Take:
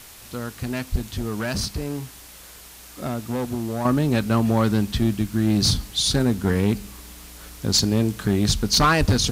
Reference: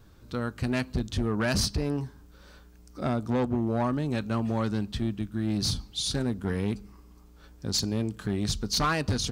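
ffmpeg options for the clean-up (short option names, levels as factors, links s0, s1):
-filter_complex "[0:a]asplit=3[s0][s1][s2];[s0]afade=t=out:st=0.91:d=0.02[s3];[s1]highpass=f=140:w=0.5412,highpass=f=140:w=1.3066,afade=t=in:st=0.91:d=0.02,afade=t=out:st=1.03:d=0.02[s4];[s2]afade=t=in:st=1.03:d=0.02[s5];[s3][s4][s5]amix=inputs=3:normalize=0,asplit=3[s6][s7][s8];[s6]afade=t=out:st=8.99:d=0.02[s9];[s7]highpass=f=140:w=0.5412,highpass=f=140:w=1.3066,afade=t=in:st=8.99:d=0.02,afade=t=out:st=9.11:d=0.02[s10];[s8]afade=t=in:st=9.11:d=0.02[s11];[s9][s10][s11]amix=inputs=3:normalize=0,afwtdn=0.0071,asetnsamples=n=441:p=0,asendcmd='3.85 volume volume -8.5dB',volume=1"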